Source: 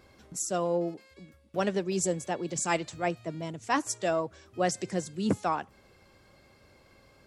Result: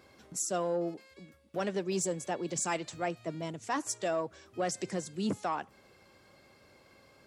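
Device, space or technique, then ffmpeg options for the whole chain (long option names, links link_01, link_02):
soft clipper into limiter: -af "asoftclip=type=tanh:threshold=-18dB,alimiter=limit=-23dB:level=0:latency=1:release=185,highpass=frequency=150:poles=1"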